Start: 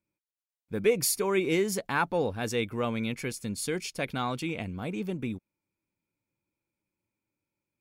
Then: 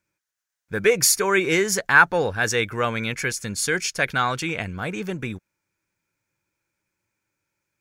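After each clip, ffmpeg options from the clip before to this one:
-af "equalizer=f=250:t=o:w=0.67:g=-7,equalizer=f=1.6k:t=o:w=0.67:g=12,equalizer=f=6.3k:t=o:w=0.67:g=8,volume=6dB"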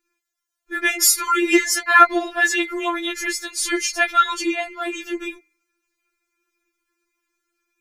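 -af "bandreject=f=159.5:t=h:w=4,bandreject=f=319:t=h:w=4,bandreject=f=478.5:t=h:w=4,bandreject=f=638:t=h:w=4,bandreject=f=797.5:t=h:w=4,bandreject=f=957:t=h:w=4,bandreject=f=1.1165k:t=h:w=4,bandreject=f=1.276k:t=h:w=4,bandreject=f=1.4355k:t=h:w=4,bandreject=f=1.595k:t=h:w=4,bandreject=f=1.7545k:t=h:w=4,bandreject=f=1.914k:t=h:w=4,bandreject=f=2.0735k:t=h:w=4,bandreject=f=2.233k:t=h:w=4,bandreject=f=2.3925k:t=h:w=4,bandreject=f=2.552k:t=h:w=4,bandreject=f=2.7115k:t=h:w=4,bandreject=f=2.871k:t=h:w=4,bandreject=f=3.0305k:t=h:w=4,bandreject=f=3.19k:t=h:w=4,bandreject=f=3.3495k:t=h:w=4,bandreject=f=3.509k:t=h:w=4,bandreject=f=3.6685k:t=h:w=4,bandreject=f=3.828k:t=h:w=4,bandreject=f=3.9875k:t=h:w=4,bandreject=f=4.147k:t=h:w=4,bandreject=f=4.3065k:t=h:w=4,bandreject=f=4.466k:t=h:w=4,bandreject=f=4.6255k:t=h:w=4,bandreject=f=4.785k:t=h:w=4,bandreject=f=4.9445k:t=h:w=4,bandreject=f=5.104k:t=h:w=4,bandreject=f=5.2635k:t=h:w=4,afftfilt=real='re*4*eq(mod(b,16),0)':imag='im*4*eq(mod(b,16),0)':win_size=2048:overlap=0.75,volume=5.5dB"

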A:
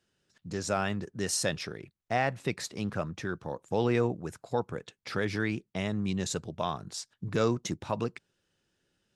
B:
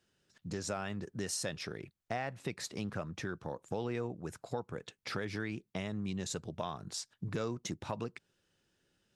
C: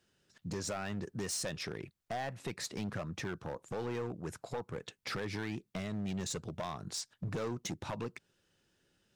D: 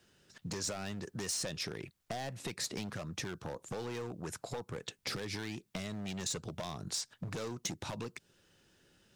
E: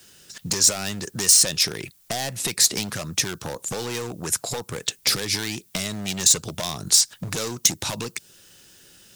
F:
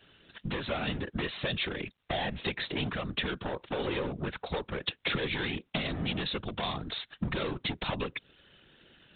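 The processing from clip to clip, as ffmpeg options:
-af "acompressor=threshold=-36dB:ratio=3"
-af "volume=34.5dB,asoftclip=hard,volume=-34.5dB,volume=2dB"
-filter_complex "[0:a]acrossover=split=600|3400|7700[a][b][c][d];[a]acompressor=threshold=-48dB:ratio=4[e];[b]acompressor=threshold=-54dB:ratio=4[f];[c]acompressor=threshold=-45dB:ratio=4[g];[d]acompressor=threshold=-51dB:ratio=4[h];[e][f][g][h]amix=inputs=4:normalize=0,volume=7dB"
-af "crystalizer=i=4:c=0,volume=9dB"
-af "afftfilt=real='hypot(re,im)*cos(2*PI*random(0))':imag='hypot(re,im)*sin(2*PI*random(1))':win_size=512:overlap=0.75,volume=3.5dB" -ar 8000 -c:a adpcm_g726 -b:a 40k

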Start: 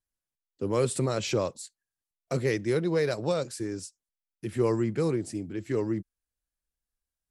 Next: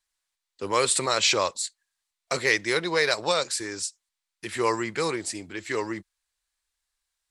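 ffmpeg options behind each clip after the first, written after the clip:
-af "equalizer=f=125:t=o:w=1:g=-10,equalizer=f=250:t=o:w=1:g=-5,equalizer=f=1k:t=o:w=1:g=9,equalizer=f=2k:t=o:w=1:g=9,equalizer=f=4k:t=o:w=1:g=11,equalizer=f=8k:t=o:w=1:g=10"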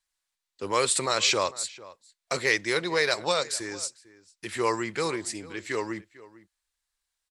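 -filter_complex "[0:a]asplit=2[a][b];[b]adelay=449,volume=-19dB,highshelf=f=4k:g=-10.1[c];[a][c]amix=inputs=2:normalize=0,volume=-1.5dB"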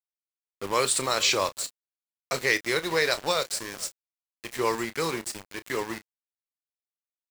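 -filter_complex "[0:a]aeval=exprs='val(0)*gte(abs(val(0)),0.0251)':c=same,asplit=2[a][b];[b]adelay=31,volume=-13dB[c];[a][c]amix=inputs=2:normalize=0"

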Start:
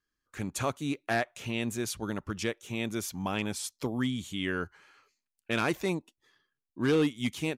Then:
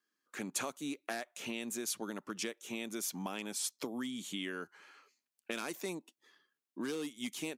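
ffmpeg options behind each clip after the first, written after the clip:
-filter_complex "[0:a]highpass=f=200:w=0.5412,highpass=f=200:w=1.3066,acrossover=split=5400[a][b];[a]acompressor=threshold=-38dB:ratio=6[c];[c][b]amix=inputs=2:normalize=0,volume=1dB"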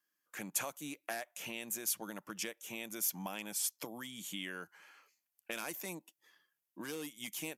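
-af "equalizer=f=250:t=o:w=0.33:g=-11,equalizer=f=400:t=o:w=0.33:g=-10,equalizer=f=1.25k:t=o:w=0.33:g=-4,equalizer=f=4k:t=o:w=0.33:g=-6,equalizer=f=12.5k:t=o:w=0.33:g=12"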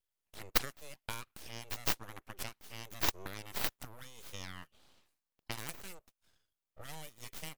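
-af "aeval=exprs='0.106*(cos(1*acos(clip(val(0)/0.106,-1,1)))-cos(1*PI/2))+0.0299*(cos(3*acos(clip(val(0)/0.106,-1,1)))-cos(3*PI/2))+0.000841*(cos(8*acos(clip(val(0)/0.106,-1,1)))-cos(8*PI/2))':c=same,aeval=exprs='abs(val(0))':c=same,volume=12.5dB"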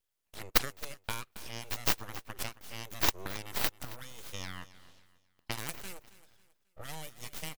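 -af "aecho=1:1:271|542|813:0.133|0.0467|0.0163,volume=4dB"

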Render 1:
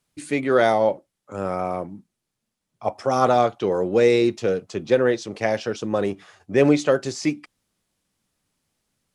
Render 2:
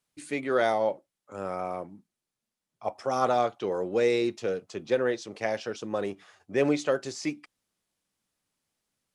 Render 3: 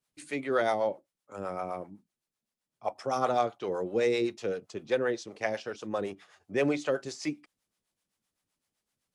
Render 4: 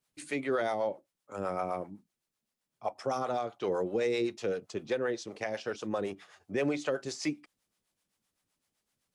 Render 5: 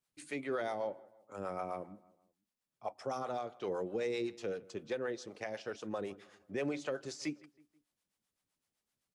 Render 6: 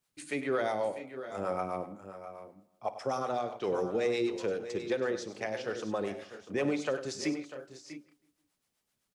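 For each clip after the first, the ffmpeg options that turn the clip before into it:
-af "lowshelf=f=230:g=-7,volume=-6dB"
-filter_complex "[0:a]acrossover=split=490[a][b];[a]aeval=exprs='val(0)*(1-0.7/2+0.7/2*cos(2*PI*7.8*n/s))':c=same[c];[b]aeval=exprs='val(0)*(1-0.7/2-0.7/2*cos(2*PI*7.8*n/s))':c=same[d];[c][d]amix=inputs=2:normalize=0,volume=1dB"
-af "alimiter=limit=-23.5dB:level=0:latency=1:release=234,volume=2dB"
-filter_complex "[0:a]asplit=2[a][b];[b]adelay=161,lowpass=f=2.4k:p=1,volume=-21dB,asplit=2[c][d];[d]adelay=161,lowpass=f=2.4k:p=1,volume=0.47,asplit=2[e][f];[f]adelay=161,lowpass=f=2.4k:p=1,volume=0.47[g];[a][c][e][g]amix=inputs=4:normalize=0,volume=-6dB"
-af "aecho=1:1:54|99|646|677:0.133|0.237|0.211|0.158,volume=5.5dB"

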